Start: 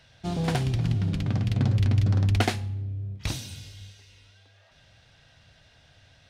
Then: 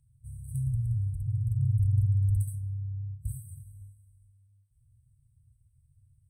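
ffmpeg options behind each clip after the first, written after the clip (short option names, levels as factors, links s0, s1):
-af "afftfilt=real='re*(1-between(b*sr/4096,140,7900))':imag='im*(1-between(b*sr/4096,140,7900))':win_size=4096:overlap=0.75,volume=0.75"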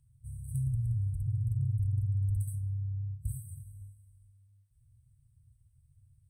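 -af "acompressor=threshold=0.0447:ratio=6"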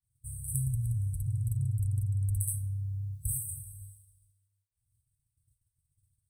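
-af "aexciter=amount=4:drive=6:freq=3100,agate=range=0.0224:threshold=0.00282:ratio=3:detection=peak"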